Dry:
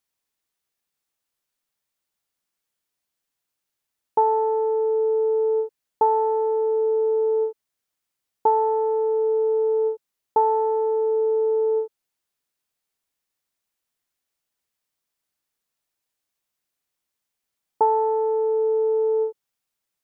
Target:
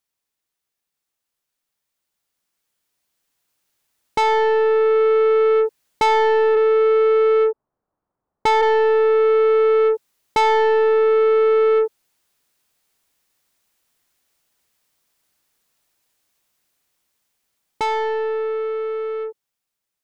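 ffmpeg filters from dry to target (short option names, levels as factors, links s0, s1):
-filter_complex "[0:a]asplit=3[s0][s1][s2];[s0]afade=t=out:st=6.55:d=0.02[s3];[s1]lowpass=f=1100:w=0.5412,lowpass=f=1100:w=1.3066,afade=t=in:st=6.55:d=0.02,afade=t=out:st=8.61:d=0.02[s4];[s2]afade=t=in:st=8.61:d=0.02[s5];[s3][s4][s5]amix=inputs=3:normalize=0,asoftclip=type=tanh:threshold=0.0501,dynaudnorm=f=720:g=9:m=4.22"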